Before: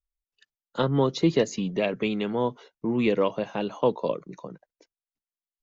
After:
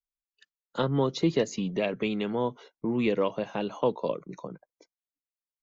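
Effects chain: spectral noise reduction 15 dB; in parallel at -2 dB: compressor, threshold -32 dBFS, peak gain reduction 15.5 dB; on the sum: gain -4.5 dB

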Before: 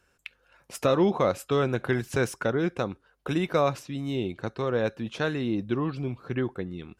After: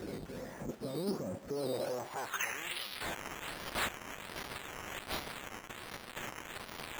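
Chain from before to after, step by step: infinite clipping; band-pass sweep 220 Hz -> 6200 Hz, 1.46–3.3; decimation with a swept rate 10×, swing 60% 1.3 Hz; formant shift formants +4 st

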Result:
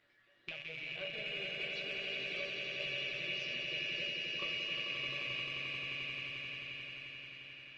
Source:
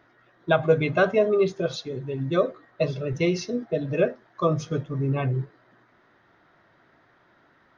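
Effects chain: rattling part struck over -34 dBFS, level -13 dBFS; resonant high shelf 1700 Hz +13.5 dB, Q 1.5; in parallel at -2 dB: limiter -5.5 dBFS, peak gain reduction 9.5 dB; on the sum: compressor 3:1, threshold -25 dBFS, peak gain reduction 16 dB; resonator 570 Hz, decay 0.56 s, mix 90%; soft clip -20 dBFS, distortion -35 dB; air absorption 160 m; on a send: swelling echo 88 ms, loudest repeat 8, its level -6.5 dB; on the sum: gain -1.5 dB; Opus 20 kbps 48000 Hz

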